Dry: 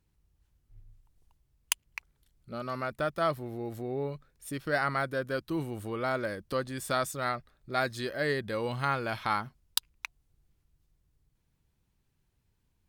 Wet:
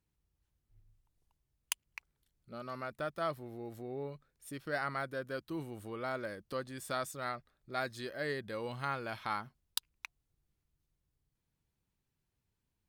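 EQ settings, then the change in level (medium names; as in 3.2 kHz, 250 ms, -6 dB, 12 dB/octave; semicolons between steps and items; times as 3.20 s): bass shelf 77 Hz -6.5 dB; -7.0 dB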